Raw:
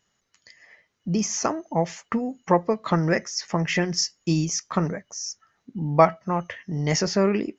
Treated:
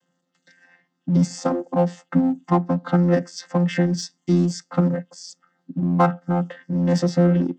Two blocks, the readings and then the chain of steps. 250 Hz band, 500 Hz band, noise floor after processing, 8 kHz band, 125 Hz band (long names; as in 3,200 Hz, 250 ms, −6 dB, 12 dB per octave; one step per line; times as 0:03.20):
+6.0 dB, +0.5 dB, −74 dBFS, can't be measured, +6.0 dB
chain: channel vocoder with a chord as carrier bare fifth, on F3
notch filter 2,400 Hz, Q 5.2
in parallel at −7 dB: gain into a clipping stage and back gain 28 dB
on the sum: level +3 dB